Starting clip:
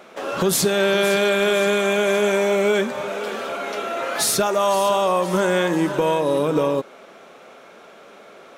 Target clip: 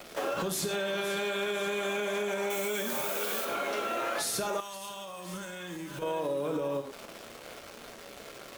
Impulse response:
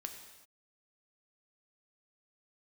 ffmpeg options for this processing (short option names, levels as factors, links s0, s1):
-filter_complex "[0:a]acrossover=split=110|480|5500[s0][s1][s2][s3];[s2]acrusher=bits=6:mix=0:aa=0.000001[s4];[s0][s1][s4][s3]amix=inputs=4:normalize=0,asettb=1/sr,asplit=3[s5][s6][s7];[s5]atrim=end=2.504[s8];[s6]atrim=start=2.5:end=3.45,asetpts=PTS-STARTPTS,afade=t=in:d=0.004:c=qsin,afade=t=out:st=0.946:d=0.004:c=qsin,aemphasis=mode=production:type=75fm[s9];[s7]atrim=start=3.446[s10];[s8][s9]acrossfade=d=0.004:c1=hsin:c2=qsin[s11];[s11][s10]acrossfade=d=0.004:c1=qsin:c2=hsin[s12];[1:a]atrim=start_sample=2205,afade=t=out:st=0.25:d=0.01,atrim=end_sample=11466,asetrate=79380,aresample=44100[s13];[s12][s13]afir=irnorm=-1:irlink=0,alimiter=limit=0.0631:level=0:latency=1:release=152,acompressor=threshold=0.0158:ratio=5,asettb=1/sr,asplit=3[s14][s15][s16];[s14]atrim=end=4.604[s17];[s15]atrim=start=4.6:end=6.02,asetpts=PTS-STARTPTS,afade=t=in:d=0.004:c=qsin,afade=t=out:st=1.416:d=0.004:c=qsin,equalizer=f=600:t=o:w=2.7:g=-13[s18];[s16]atrim=start=6.016[s19];[s17][s18]acrossfade=d=0.004:c1=hsin:c2=qsin[s20];[s20][s19]acrossfade=d=0.004:c1=qsin:c2=hsin,volume=2.24"